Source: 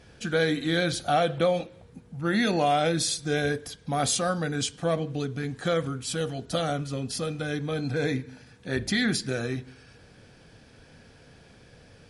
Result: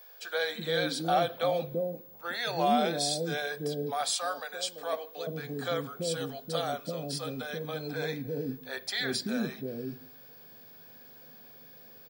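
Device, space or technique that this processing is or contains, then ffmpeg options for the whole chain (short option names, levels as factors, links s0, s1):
old television with a line whistle: -filter_complex "[0:a]asettb=1/sr,asplit=3[s0][s1][s2];[s0]atrim=end=3.794[s3];[s1]atrim=start=3.79:end=4.93,asetpts=PTS-STARTPTS,afade=t=in:d=0.004:c=qsin,afade=t=out:st=1.136:d=0.004:c=qsin,highpass=610[s4];[s2]atrim=start=4.926[s5];[s3][s4]acrossfade=d=0.004:c1=hsin:c2=qsin[s6];[s6][s5]acrossfade=d=0.004:c1=qsin:c2=hsin,highpass=f=170:w=0.5412,highpass=f=170:w=1.3066,equalizer=f=190:t=q:w=4:g=-8,equalizer=f=320:t=q:w=4:g=-8,equalizer=f=1400:t=q:w=4:g=-4,equalizer=f=2000:t=q:w=4:g=-6,equalizer=f=2800:t=q:w=4:g=-7,equalizer=f=6500:t=q:w=4:g=-9,lowpass=f=8900:w=0.5412,lowpass=f=8900:w=1.3066,acrossover=split=500[s7][s8];[s7]adelay=340[s9];[s9][s8]amix=inputs=2:normalize=0,aeval=exprs='val(0)+0.00316*sin(2*PI*15625*n/s)':c=same"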